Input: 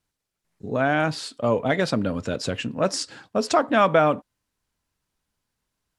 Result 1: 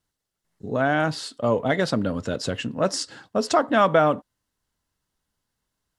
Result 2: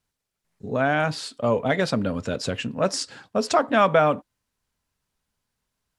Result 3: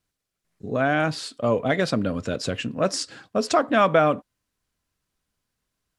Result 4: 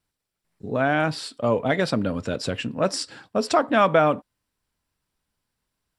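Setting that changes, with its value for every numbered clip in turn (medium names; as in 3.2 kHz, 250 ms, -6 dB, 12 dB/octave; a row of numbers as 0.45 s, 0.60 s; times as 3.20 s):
band-stop, frequency: 2.4 kHz, 320 Hz, 890 Hz, 6.5 kHz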